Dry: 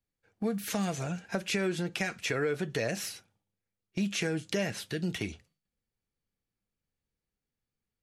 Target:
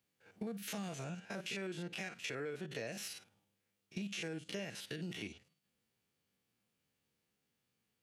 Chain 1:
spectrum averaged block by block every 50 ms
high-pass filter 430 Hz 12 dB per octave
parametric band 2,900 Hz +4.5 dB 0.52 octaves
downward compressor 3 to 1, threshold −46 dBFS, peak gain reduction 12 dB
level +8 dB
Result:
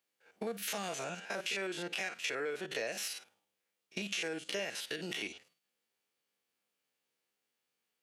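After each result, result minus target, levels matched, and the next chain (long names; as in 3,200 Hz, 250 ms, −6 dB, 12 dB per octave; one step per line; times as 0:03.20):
125 Hz band −10.5 dB; downward compressor: peak gain reduction −7.5 dB
spectrum averaged block by block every 50 ms
high-pass filter 130 Hz 12 dB per octave
parametric band 2,900 Hz +4.5 dB 0.52 octaves
downward compressor 3 to 1, threshold −46 dBFS, peak gain reduction 14 dB
level +8 dB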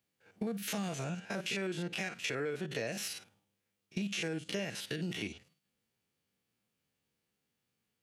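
downward compressor: peak gain reduction −5.5 dB
spectrum averaged block by block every 50 ms
high-pass filter 130 Hz 12 dB per octave
parametric band 2,900 Hz +4.5 dB 0.52 octaves
downward compressor 3 to 1, threshold −54.5 dBFS, peak gain reduction 20 dB
level +8 dB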